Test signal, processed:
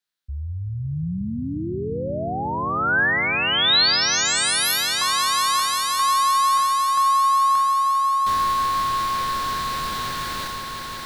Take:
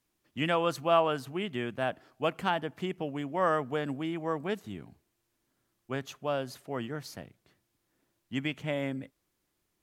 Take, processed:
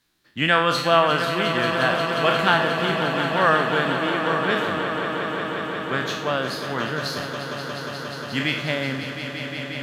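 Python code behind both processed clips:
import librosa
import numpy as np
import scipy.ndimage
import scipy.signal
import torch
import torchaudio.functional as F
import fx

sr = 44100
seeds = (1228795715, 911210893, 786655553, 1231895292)

y = fx.spec_trails(x, sr, decay_s=0.59)
y = fx.graphic_eq_15(y, sr, hz=(160, 1600, 4000), db=(3, 9, 11))
y = fx.echo_swell(y, sr, ms=178, loudest=5, wet_db=-11)
y = y * 10.0 ** (4.0 / 20.0)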